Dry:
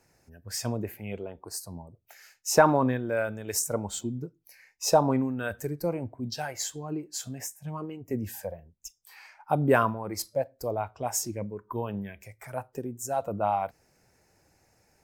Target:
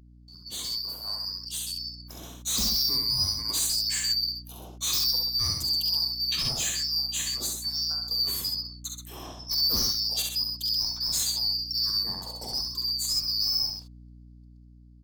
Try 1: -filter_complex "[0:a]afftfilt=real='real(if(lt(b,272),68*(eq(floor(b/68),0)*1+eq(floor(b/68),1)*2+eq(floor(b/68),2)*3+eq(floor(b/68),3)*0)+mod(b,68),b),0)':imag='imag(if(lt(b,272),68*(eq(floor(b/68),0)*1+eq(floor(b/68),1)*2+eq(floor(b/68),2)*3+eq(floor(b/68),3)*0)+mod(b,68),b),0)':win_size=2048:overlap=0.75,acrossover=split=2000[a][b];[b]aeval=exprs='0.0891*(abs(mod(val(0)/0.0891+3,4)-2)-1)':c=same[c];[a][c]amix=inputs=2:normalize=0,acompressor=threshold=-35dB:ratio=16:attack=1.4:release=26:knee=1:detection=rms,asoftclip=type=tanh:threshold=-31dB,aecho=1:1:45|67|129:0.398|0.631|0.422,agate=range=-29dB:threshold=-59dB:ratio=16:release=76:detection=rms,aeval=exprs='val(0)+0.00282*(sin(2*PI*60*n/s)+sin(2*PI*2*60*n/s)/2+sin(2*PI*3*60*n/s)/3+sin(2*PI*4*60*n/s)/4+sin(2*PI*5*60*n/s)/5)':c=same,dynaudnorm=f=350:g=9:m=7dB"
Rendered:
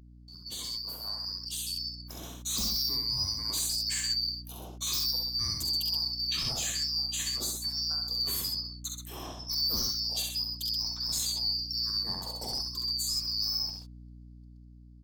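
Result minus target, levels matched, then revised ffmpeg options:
compressor: peak gain reduction +8 dB
-filter_complex "[0:a]afftfilt=real='real(if(lt(b,272),68*(eq(floor(b/68),0)*1+eq(floor(b/68),1)*2+eq(floor(b/68),2)*3+eq(floor(b/68),3)*0)+mod(b,68),b),0)':imag='imag(if(lt(b,272),68*(eq(floor(b/68),0)*1+eq(floor(b/68),1)*2+eq(floor(b/68),2)*3+eq(floor(b/68),3)*0)+mod(b,68),b),0)':win_size=2048:overlap=0.75,acrossover=split=2000[a][b];[b]aeval=exprs='0.0891*(abs(mod(val(0)/0.0891+3,4)-2)-1)':c=same[c];[a][c]amix=inputs=2:normalize=0,acompressor=threshold=-26.5dB:ratio=16:attack=1.4:release=26:knee=1:detection=rms,asoftclip=type=tanh:threshold=-31dB,aecho=1:1:45|67|129:0.398|0.631|0.422,agate=range=-29dB:threshold=-59dB:ratio=16:release=76:detection=rms,aeval=exprs='val(0)+0.00282*(sin(2*PI*60*n/s)+sin(2*PI*2*60*n/s)/2+sin(2*PI*3*60*n/s)/3+sin(2*PI*4*60*n/s)/4+sin(2*PI*5*60*n/s)/5)':c=same,dynaudnorm=f=350:g=9:m=7dB"

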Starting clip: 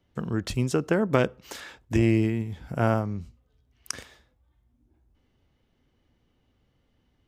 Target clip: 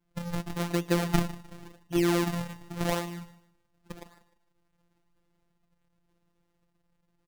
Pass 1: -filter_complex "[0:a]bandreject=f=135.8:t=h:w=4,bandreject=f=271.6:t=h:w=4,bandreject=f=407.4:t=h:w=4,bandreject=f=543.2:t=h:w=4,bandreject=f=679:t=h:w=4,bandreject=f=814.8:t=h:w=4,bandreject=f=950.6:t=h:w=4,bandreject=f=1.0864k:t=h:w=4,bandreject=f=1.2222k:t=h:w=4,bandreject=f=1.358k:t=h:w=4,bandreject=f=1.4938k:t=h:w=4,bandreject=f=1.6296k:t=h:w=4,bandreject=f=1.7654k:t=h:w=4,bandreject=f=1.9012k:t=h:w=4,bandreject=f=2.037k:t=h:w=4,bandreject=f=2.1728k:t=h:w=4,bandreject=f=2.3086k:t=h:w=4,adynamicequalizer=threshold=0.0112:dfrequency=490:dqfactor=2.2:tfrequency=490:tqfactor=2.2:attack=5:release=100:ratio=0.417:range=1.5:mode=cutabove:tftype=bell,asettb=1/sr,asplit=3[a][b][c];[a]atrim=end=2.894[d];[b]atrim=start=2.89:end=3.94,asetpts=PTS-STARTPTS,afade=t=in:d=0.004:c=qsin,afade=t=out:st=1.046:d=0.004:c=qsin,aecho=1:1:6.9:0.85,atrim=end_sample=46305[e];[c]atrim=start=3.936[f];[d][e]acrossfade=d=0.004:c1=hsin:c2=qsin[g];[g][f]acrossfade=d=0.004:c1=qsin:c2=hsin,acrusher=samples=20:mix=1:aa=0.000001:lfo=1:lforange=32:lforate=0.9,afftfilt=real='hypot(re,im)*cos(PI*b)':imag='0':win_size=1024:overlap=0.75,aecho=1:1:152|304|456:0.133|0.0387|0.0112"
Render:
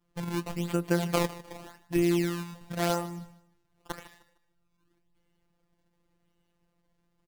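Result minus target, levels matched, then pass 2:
decimation with a swept rate: distortion -9 dB
-filter_complex "[0:a]bandreject=f=135.8:t=h:w=4,bandreject=f=271.6:t=h:w=4,bandreject=f=407.4:t=h:w=4,bandreject=f=543.2:t=h:w=4,bandreject=f=679:t=h:w=4,bandreject=f=814.8:t=h:w=4,bandreject=f=950.6:t=h:w=4,bandreject=f=1.0864k:t=h:w=4,bandreject=f=1.2222k:t=h:w=4,bandreject=f=1.358k:t=h:w=4,bandreject=f=1.4938k:t=h:w=4,bandreject=f=1.6296k:t=h:w=4,bandreject=f=1.7654k:t=h:w=4,bandreject=f=1.9012k:t=h:w=4,bandreject=f=2.037k:t=h:w=4,bandreject=f=2.1728k:t=h:w=4,bandreject=f=2.3086k:t=h:w=4,adynamicequalizer=threshold=0.0112:dfrequency=490:dqfactor=2.2:tfrequency=490:tqfactor=2.2:attack=5:release=100:ratio=0.417:range=1.5:mode=cutabove:tftype=bell,asettb=1/sr,asplit=3[a][b][c];[a]atrim=end=2.894[d];[b]atrim=start=2.89:end=3.94,asetpts=PTS-STARTPTS,afade=t=in:d=0.004:c=qsin,afade=t=out:st=1.046:d=0.004:c=qsin,aecho=1:1:6.9:0.85,atrim=end_sample=46305[e];[c]atrim=start=3.936[f];[d][e]acrossfade=d=0.004:c1=hsin:c2=qsin[g];[g][f]acrossfade=d=0.004:c1=qsin:c2=hsin,acrusher=samples=69:mix=1:aa=0.000001:lfo=1:lforange=110:lforate=0.9,afftfilt=real='hypot(re,im)*cos(PI*b)':imag='0':win_size=1024:overlap=0.75,aecho=1:1:152|304|456:0.133|0.0387|0.0112"

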